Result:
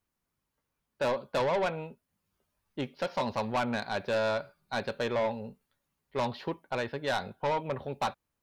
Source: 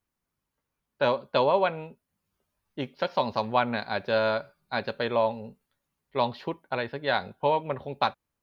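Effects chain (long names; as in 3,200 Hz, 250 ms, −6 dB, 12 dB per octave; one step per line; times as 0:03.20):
soft clipping −24 dBFS, distortion −9 dB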